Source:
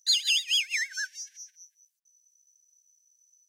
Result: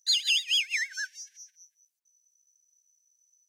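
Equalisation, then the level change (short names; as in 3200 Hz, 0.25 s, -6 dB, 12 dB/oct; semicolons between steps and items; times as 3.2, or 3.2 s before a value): dynamic EQ 2500 Hz, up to +4 dB, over -38 dBFS, Q 0.79; -3.5 dB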